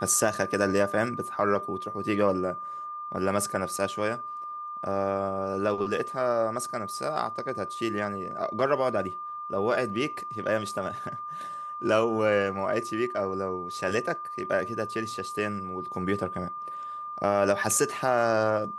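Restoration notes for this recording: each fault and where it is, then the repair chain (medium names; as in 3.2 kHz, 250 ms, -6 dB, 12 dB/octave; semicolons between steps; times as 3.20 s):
whine 1.2 kHz -34 dBFS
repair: band-stop 1.2 kHz, Q 30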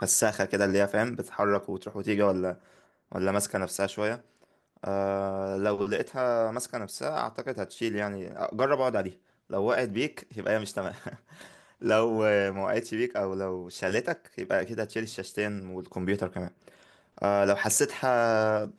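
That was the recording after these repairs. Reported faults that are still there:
nothing left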